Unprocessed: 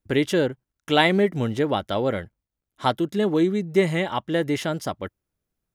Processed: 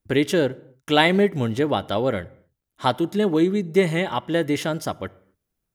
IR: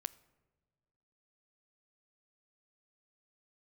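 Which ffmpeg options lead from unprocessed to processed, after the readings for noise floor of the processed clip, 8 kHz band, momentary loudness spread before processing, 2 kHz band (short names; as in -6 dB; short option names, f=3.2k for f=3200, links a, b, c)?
-81 dBFS, +2.5 dB, 11 LU, +1.0 dB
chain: -filter_complex "[0:a]asplit=2[a][b];[1:a]atrim=start_sample=2205,afade=t=out:st=0.33:d=0.01,atrim=end_sample=14994,highshelf=f=10k:g=5[c];[b][c]afir=irnorm=-1:irlink=0,volume=10dB[d];[a][d]amix=inputs=2:normalize=0,volume=-9.5dB"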